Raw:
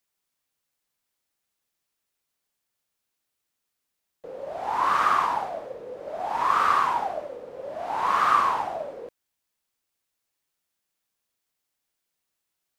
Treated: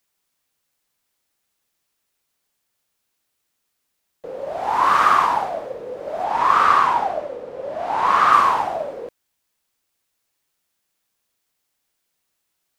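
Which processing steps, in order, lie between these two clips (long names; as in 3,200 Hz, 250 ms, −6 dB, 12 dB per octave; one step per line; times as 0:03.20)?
0:06.24–0:08.33: high-shelf EQ 8,600 Hz −8 dB
level +6.5 dB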